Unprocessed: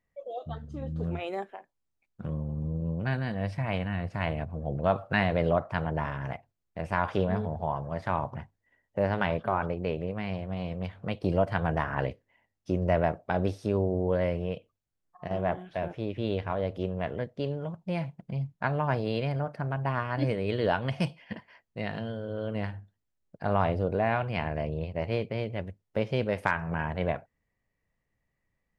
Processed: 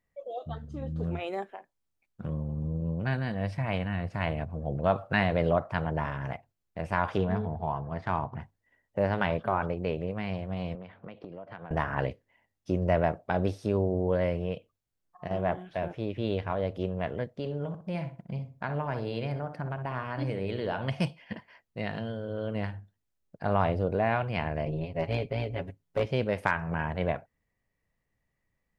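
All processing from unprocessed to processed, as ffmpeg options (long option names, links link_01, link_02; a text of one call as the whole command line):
ffmpeg -i in.wav -filter_complex "[0:a]asettb=1/sr,asplit=3[link_01][link_02][link_03];[link_01]atrim=end=7.174[link_04];[link_02]atrim=start=7.17:end=8.41,asetpts=PTS-STARTPTS,afade=type=in:duration=0.004:curve=qsin,afade=type=out:start_time=1.236:duration=0.004:curve=qsin,bandreject=frequency=560:width=5.4,adynamicsmooth=sensitivity=3.5:basefreq=4500[link_05];[link_03]atrim=start=8.406[link_06];[link_04][link_05]acrossfade=duration=0.004:curve1=hsin:curve2=qsin[link_07];[link_07][link_06]acrossfade=duration=0.004:curve1=qsin:curve2=hsin,asettb=1/sr,asplit=3[link_08][link_09][link_10];[link_08]atrim=end=10.754[link_11];[link_09]atrim=start=10.75:end=11.71,asetpts=PTS-STARTPTS,afade=type=in:duration=0.004:curve=qsin,afade=type=out:start_time=0.956:duration=0.004:curve=qsin,highpass=180,lowpass=2600,acompressor=threshold=-38dB:ratio=16:attack=3.2:release=140:knee=1:detection=peak[link_12];[link_10]atrim=start=11.706[link_13];[link_11][link_12]acrossfade=duration=0.004:curve1=hsin:curve2=qsin[link_14];[link_14][link_13]acrossfade=duration=0.004:curve1=qsin:curve2=hsin,asettb=1/sr,asplit=3[link_15][link_16][link_17];[link_15]atrim=end=17.324[link_18];[link_16]atrim=start=17.32:end=20.88,asetpts=PTS-STARTPTS,afade=type=in:duration=0.004:curve=qsin,afade=type=out:start_time=3.556:duration=0.004:curve=qsin,acompressor=threshold=-31dB:ratio=2:attack=3.2:release=140:knee=1:detection=peak,asplit=2[link_19][link_20];[link_20]adelay=62,lowpass=frequency=1700:poles=1,volume=-8dB,asplit=2[link_21][link_22];[link_22]adelay=62,lowpass=frequency=1700:poles=1,volume=0.33,asplit=2[link_23][link_24];[link_24]adelay=62,lowpass=frequency=1700:poles=1,volume=0.33,asplit=2[link_25][link_26];[link_26]adelay=62,lowpass=frequency=1700:poles=1,volume=0.33[link_27];[link_19][link_21][link_23][link_25][link_27]amix=inputs=5:normalize=0,atrim=end_sample=156996[link_28];[link_17]atrim=start=20.876[link_29];[link_18][link_28]acrossfade=duration=0.004:curve1=hsin:curve2=qsin[link_30];[link_30][link_29]acrossfade=duration=0.004:curve1=qsin:curve2=hsin,asettb=1/sr,asplit=3[link_31][link_32][link_33];[link_31]atrim=end=24.654[link_34];[link_32]atrim=start=24.65:end=26.06,asetpts=PTS-STARTPTS,afade=type=in:duration=0.004:curve=qsin,afade=type=out:start_time=1.406:duration=0.004:curve=qsin,aecho=1:1:7.3:0.96,atrim=end_sample=62181,tremolo=f=170:d=0.519,aeval=exprs='clip(val(0),-1,0.112)':channel_layout=same[link_35];[link_33]atrim=start=26.056[link_36];[link_34][link_35]acrossfade=duration=0.004:curve1=hsin:curve2=qsin[link_37];[link_37][link_36]acrossfade=duration=0.004:curve1=qsin:curve2=hsin" out.wav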